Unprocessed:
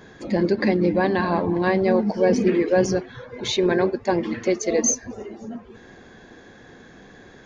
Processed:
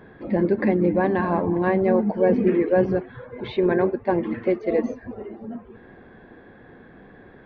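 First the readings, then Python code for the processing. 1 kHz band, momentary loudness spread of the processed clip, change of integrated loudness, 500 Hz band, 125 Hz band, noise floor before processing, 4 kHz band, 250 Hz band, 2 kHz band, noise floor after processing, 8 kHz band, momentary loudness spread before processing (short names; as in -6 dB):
-1.0 dB, 16 LU, -0.5 dB, 0.0 dB, 0.0 dB, -47 dBFS, -14.0 dB, 0.0 dB, -3.0 dB, -48 dBFS, n/a, 16 LU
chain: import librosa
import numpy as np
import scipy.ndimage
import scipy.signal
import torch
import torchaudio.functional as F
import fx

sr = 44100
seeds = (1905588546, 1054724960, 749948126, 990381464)

y = scipy.ndimage.gaussian_filter1d(x, 3.4, mode='constant')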